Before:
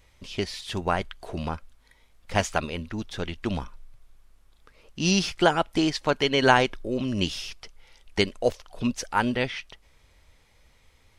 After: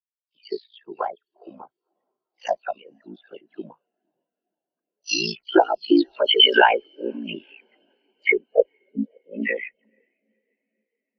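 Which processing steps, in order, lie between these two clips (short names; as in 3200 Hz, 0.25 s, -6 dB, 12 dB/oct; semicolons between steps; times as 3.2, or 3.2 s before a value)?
8.48–9.27 Chebyshev band-stop 580–3500 Hz, order 5; low-pass opened by the level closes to 1600 Hz, open at -19.5 dBFS; HPF 320 Hz 12 dB/oct; in parallel at +1.5 dB: compressor, threshold -37 dBFS, peak gain reduction 22.5 dB; on the sum: low-pass sweep 5000 Hz -> 2300 Hz, 5.55–6.95; added harmonics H 4 -24 dB, 5 -8 dB, 6 -7 dB, 8 -9 dB, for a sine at 2 dBFS; dispersion lows, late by 0.134 s, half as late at 2900 Hz; ring modulator 28 Hz; on a send: diffused feedback echo 0.495 s, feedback 74%, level -16 dB; on the sum: spectral expander 2.5:1; gain -2.5 dB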